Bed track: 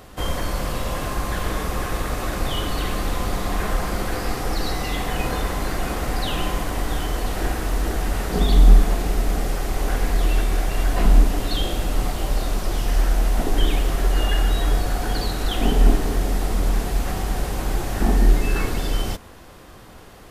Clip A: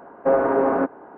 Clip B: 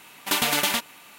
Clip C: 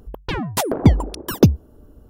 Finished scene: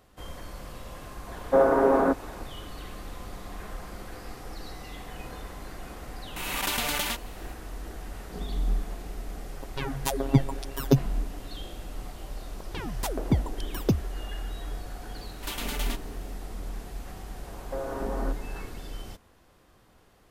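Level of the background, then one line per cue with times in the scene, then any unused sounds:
bed track -16 dB
1.27 s: add A -1.5 dB
6.36 s: add B -7 dB + swell ahead of each attack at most 32 dB/s
9.49 s: add C -6 dB + robot voice 136 Hz
12.46 s: add C -11.5 dB
15.16 s: add B -13 dB
17.47 s: add A -4.5 dB + compression 4:1, threshold -28 dBFS

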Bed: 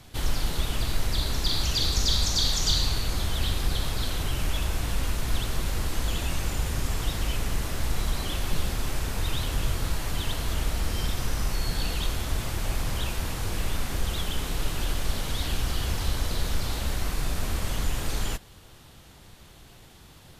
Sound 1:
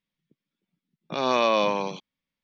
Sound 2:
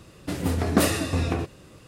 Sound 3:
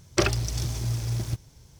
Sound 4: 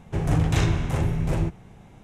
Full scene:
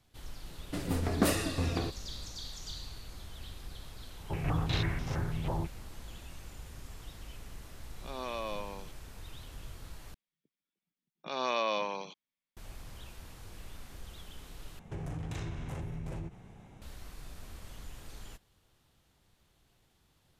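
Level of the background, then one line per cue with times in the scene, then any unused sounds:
bed -19 dB
0.45 s: add 2 -7 dB
4.17 s: add 4 -10.5 dB + step-sequenced low-pass 6.1 Hz 920–5300 Hz
6.92 s: add 1 -16.5 dB
10.14 s: replace with 1 -7.5 dB + bass shelf 390 Hz -9 dB
14.79 s: replace with 4 -5 dB + compression 4:1, threshold -32 dBFS
not used: 3

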